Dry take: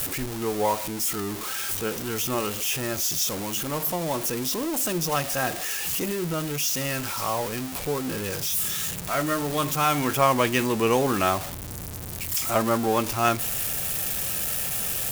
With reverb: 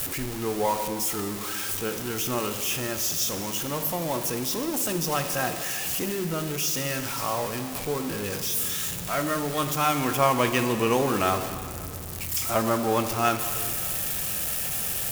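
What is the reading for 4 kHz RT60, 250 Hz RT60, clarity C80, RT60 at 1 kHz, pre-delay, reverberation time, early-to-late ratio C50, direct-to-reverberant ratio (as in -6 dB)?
2.1 s, 2.4 s, 9.5 dB, 2.4 s, 21 ms, 2.4 s, 9.0 dB, 8.0 dB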